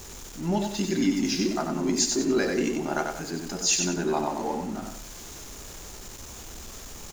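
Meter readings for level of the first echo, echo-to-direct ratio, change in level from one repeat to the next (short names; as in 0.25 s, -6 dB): -5.0 dB, -4.5 dB, -9.5 dB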